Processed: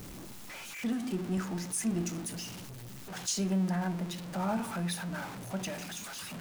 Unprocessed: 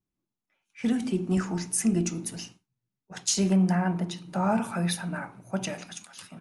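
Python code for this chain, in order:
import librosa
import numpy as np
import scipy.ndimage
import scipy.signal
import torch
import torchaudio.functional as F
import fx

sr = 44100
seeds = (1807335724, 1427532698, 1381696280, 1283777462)

y = x + 0.5 * 10.0 ** (-29.5 / 20.0) * np.sign(x)
y = y * 10.0 ** (-8.5 / 20.0)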